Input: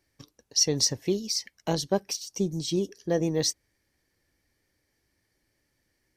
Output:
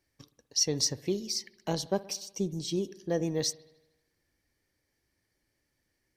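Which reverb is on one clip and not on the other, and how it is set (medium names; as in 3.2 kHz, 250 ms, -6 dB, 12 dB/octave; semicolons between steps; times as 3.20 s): spring tank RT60 1 s, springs 59 ms, chirp 20 ms, DRR 17 dB; trim -4 dB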